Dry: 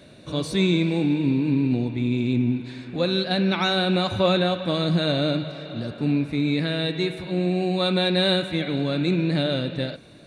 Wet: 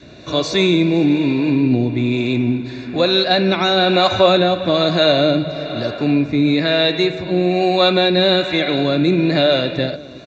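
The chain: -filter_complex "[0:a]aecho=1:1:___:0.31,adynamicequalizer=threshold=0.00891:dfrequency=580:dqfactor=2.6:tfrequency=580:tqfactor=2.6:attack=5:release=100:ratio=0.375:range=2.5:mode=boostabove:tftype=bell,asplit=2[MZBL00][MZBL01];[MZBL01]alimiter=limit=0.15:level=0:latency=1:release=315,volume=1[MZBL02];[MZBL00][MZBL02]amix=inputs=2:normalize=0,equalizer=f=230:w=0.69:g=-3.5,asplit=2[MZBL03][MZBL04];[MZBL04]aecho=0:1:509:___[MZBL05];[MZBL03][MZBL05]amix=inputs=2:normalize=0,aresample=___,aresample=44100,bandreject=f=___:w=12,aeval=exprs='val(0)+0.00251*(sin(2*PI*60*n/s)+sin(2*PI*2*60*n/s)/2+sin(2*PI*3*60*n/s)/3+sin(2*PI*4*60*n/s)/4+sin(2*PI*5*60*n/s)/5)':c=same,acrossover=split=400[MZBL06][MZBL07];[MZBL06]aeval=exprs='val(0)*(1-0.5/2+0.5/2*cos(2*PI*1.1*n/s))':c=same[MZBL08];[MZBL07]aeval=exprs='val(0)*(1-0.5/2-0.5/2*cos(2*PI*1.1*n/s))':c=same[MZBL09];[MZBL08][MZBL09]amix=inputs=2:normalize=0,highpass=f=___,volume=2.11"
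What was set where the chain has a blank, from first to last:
2.9, 0.106, 16000, 3100, 89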